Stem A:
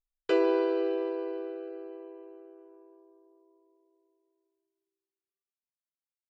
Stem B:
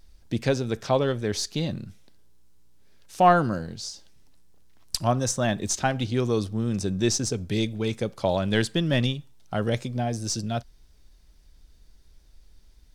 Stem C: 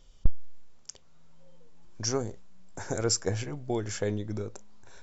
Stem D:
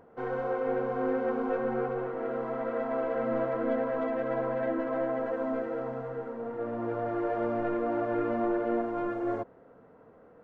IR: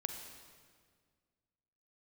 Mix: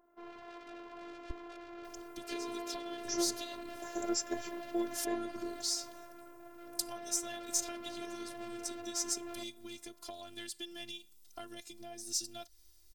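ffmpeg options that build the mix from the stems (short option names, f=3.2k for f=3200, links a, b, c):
-filter_complex "[0:a]adelay=2000,volume=-13.5dB[a];[1:a]acompressor=threshold=-32dB:ratio=12,adelay=1850,volume=-7dB[b];[2:a]bandpass=f=440:t=q:w=0.53:csg=0,adelay=1050,volume=-0.5dB[c];[3:a]asoftclip=type=tanh:threshold=-33dB,volume=-8dB[d];[a][b][c][d]amix=inputs=4:normalize=0,aemphasis=mode=production:type=75fm,afftfilt=real='hypot(re,im)*cos(PI*b)':imag='0':win_size=512:overlap=0.75,adynamicequalizer=threshold=0.00224:dfrequency=2000:dqfactor=0.7:tfrequency=2000:tqfactor=0.7:attack=5:release=100:ratio=0.375:range=2.5:mode=boostabove:tftype=highshelf"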